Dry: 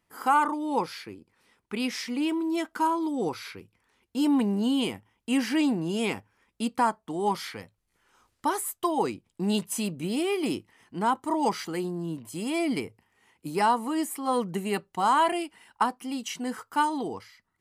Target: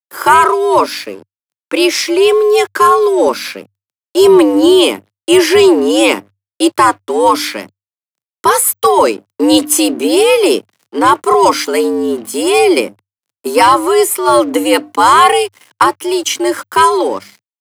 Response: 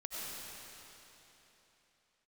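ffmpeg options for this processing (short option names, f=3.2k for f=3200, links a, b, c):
-af "highshelf=f=4.5k:g=3,bandreject=f=50.53:t=h:w=4,bandreject=f=101.06:t=h:w=4,bandreject=f=151.59:t=h:w=4,bandreject=f=202.12:t=h:w=4,aeval=exprs='sgn(val(0))*max(abs(val(0))-0.00237,0)':c=same,afreqshift=98,apsyclip=20dB,volume=-1.5dB"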